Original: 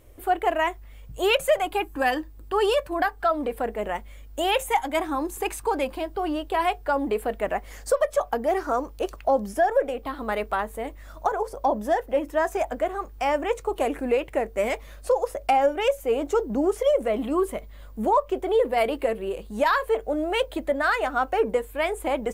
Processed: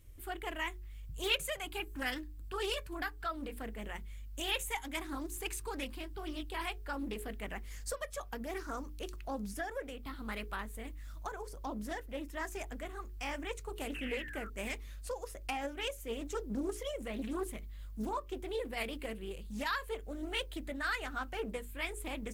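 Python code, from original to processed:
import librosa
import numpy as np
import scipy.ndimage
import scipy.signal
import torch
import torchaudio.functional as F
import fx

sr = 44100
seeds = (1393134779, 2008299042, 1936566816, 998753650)

y = fx.spec_paint(x, sr, seeds[0], shape='fall', start_s=13.94, length_s=0.56, low_hz=1300.0, high_hz=2800.0, level_db=-37.0)
y = fx.tone_stack(y, sr, knobs='6-0-2')
y = fx.hum_notches(y, sr, base_hz=60, count=7)
y = fx.doppler_dist(y, sr, depth_ms=0.5)
y = y * 10.0 ** (10.0 / 20.0)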